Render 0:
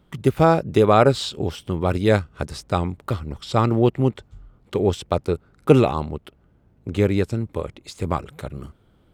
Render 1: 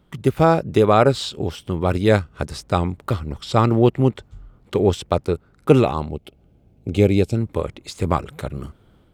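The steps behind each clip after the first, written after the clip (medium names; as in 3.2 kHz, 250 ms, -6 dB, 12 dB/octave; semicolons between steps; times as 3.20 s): time-frequency box 6.09–7.36 s, 860–2100 Hz -10 dB; level rider gain up to 5 dB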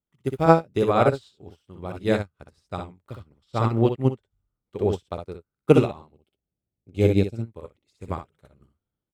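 on a send: early reflections 61 ms -3 dB, 71 ms -15.5 dB; on the sum: upward expansion 2.5:1, over -30 dBFS; trim -1 dB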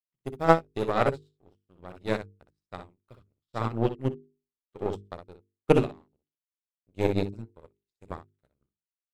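partial rectifier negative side -3 dB; power-law waveshaper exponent 1.4; hum notches 50/100/150/200/250/300/350/400/450 Hz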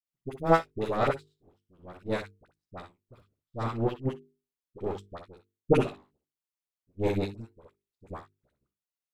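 phase dispersion highs, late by 53 ms, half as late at 870 Hz; trim -2 dB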